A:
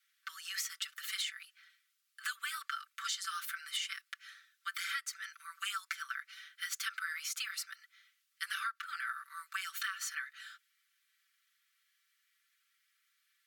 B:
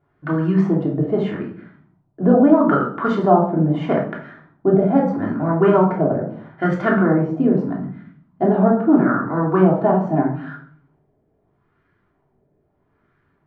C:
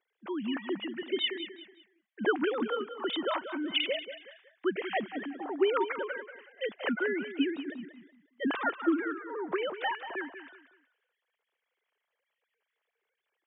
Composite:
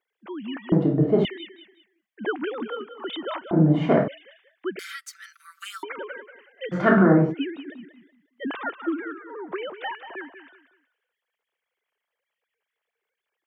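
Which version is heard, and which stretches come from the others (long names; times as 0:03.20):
C
0:00.72–0:01.25: punch in from B
0:03.51–0:04.08: punch in from B
0:04.79–0:05.83: punch in from A
0:06.74–0:07.32: punch in from B, crossfade 0.06 s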